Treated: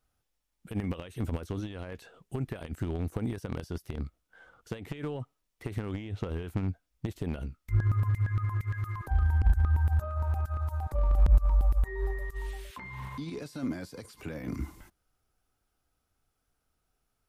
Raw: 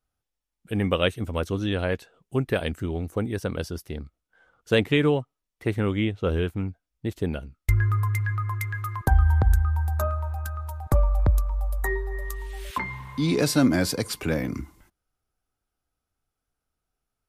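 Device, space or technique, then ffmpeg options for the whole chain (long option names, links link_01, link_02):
de-esser from a sidechain: -filter_complex "[0:a]asplit=2[link_01][link_02];[link_02]highpass=frequency=6600:poles=1,apad=whole_len=762343[link_03];[link_01][link_03]sidechaincompress=threshold=-57dB:ratio=10:attack=0.64:release=34,volume=4.5dB"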